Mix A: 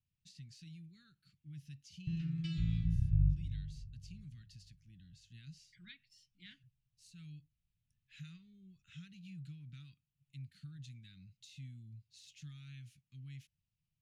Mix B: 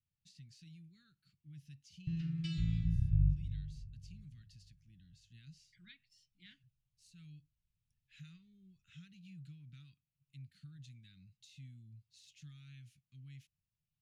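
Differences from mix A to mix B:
speech −3.5 dB
background: add high-shelf EQ 4,700 Hz +6.5 dB

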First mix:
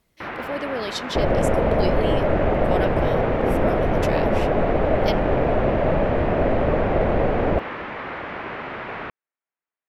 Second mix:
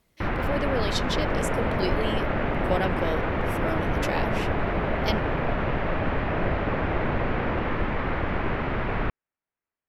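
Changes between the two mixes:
first sound: remove high-pass filter 520 Hz 6 dB per octave
second sound −12.0 dB

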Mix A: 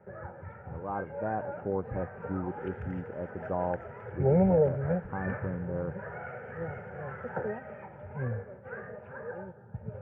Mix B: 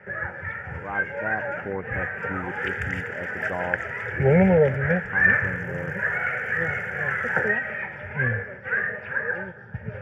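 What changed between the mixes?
background: remove transistor ladder low-pass 1,500 Hz, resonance 25%
master: add low-pass with resonance 1,800 Hz, resonance Q 3.9

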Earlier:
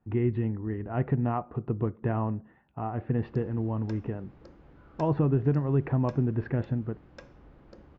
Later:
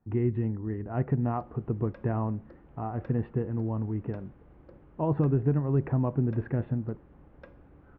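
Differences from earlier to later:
background: entry −1.95 s
master: add high-frequency loss of the air 430 metres

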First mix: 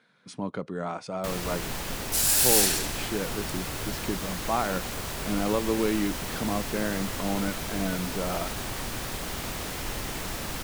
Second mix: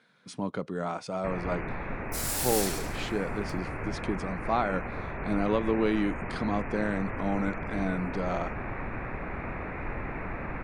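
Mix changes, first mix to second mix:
first sound: add Butterworth low-pass 2,500 Hz 96 dB per octave
second sound −10.0 dB

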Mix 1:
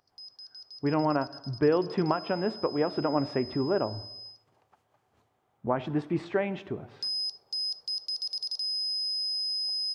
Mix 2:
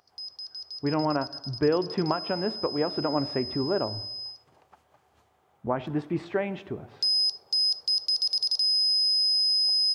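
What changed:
background +7.5 dB
master: add parametric band 73 Hz +7.5 dB 0.33 octaves

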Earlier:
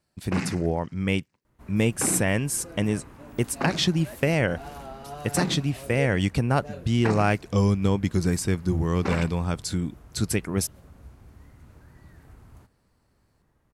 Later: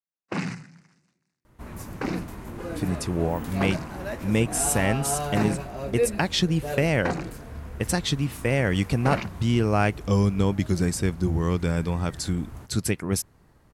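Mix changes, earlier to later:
speech: entry +2.55 s
second sound +9.5 dB

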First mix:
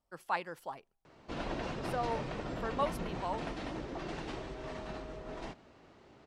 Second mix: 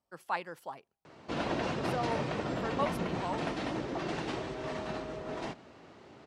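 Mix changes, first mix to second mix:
background +5.5 dB
master: add high-pass filter 90 Hz 12 dB per octave

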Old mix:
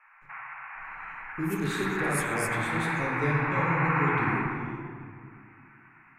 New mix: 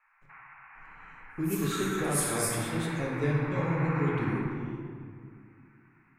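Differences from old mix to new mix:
first sound −10.0 dB
second sound: send on

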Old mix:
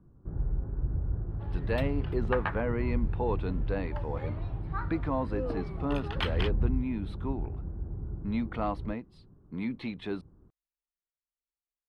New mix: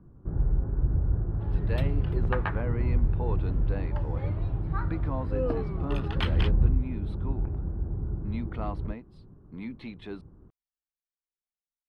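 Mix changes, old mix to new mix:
speech −4.5 dB
first sound +5.5 dB

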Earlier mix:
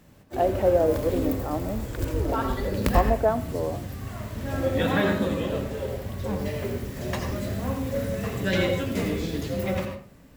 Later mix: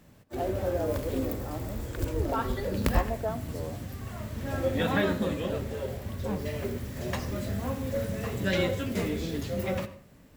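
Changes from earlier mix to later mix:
speech −10.0 dB
background: send −11.5 dB

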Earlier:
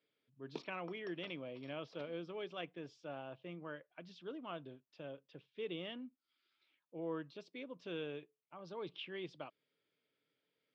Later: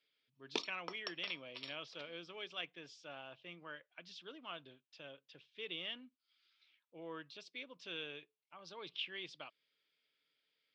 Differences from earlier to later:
first sound +11.5 dB
master: add tilt shelving filter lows −9.5 dB, about 1,300 Hz

